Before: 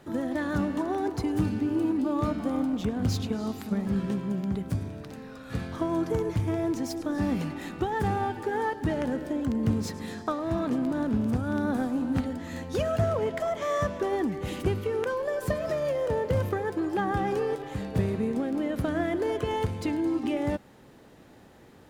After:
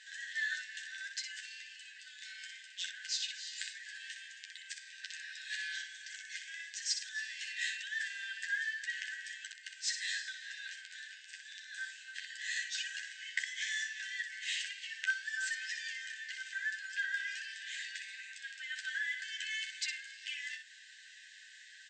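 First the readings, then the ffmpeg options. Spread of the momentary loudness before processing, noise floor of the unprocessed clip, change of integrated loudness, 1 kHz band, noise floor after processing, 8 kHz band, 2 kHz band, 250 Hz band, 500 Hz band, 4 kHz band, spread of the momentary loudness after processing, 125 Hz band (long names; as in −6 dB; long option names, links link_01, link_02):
5 LU, −53 dBFS, −10.0 dB, below −40 dB, −56 dBFS, +5.0 dB, +3.5 dB, below −40 dB, below −40 dB, +5.5 dB, 12 LU, below −40 dB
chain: -filter_complex "[0:a]acompressor=threshold=-30dB:ratio=6,afftfilt=real='re*between(b*sr/4096,1500,8500)':imag='im*between(b*sr/4096,1500,8500)':win_size=4096:overlap=0.75,bandreject=frequency=2300:width=8.6,asplit=2[link_01][link_02];[link_02]aecho=0:1:11|62:0.596|0.501[link_03];[link_01][link_03]amix=inputs=2:normalize=0,volume=7.5dB"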